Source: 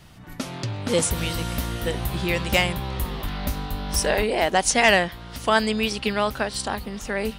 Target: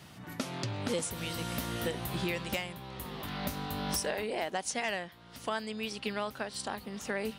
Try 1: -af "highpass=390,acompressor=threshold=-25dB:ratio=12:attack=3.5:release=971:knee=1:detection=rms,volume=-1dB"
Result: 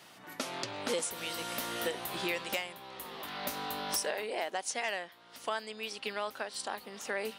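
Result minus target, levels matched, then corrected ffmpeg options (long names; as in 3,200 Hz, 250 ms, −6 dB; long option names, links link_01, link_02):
125 Hz band −13.5 dB
-af "highpass=120,acompressor=threshold=-25dB:ratio=12:attack=3.5:release=971:knee=1:detection=rms,volume=-1dB"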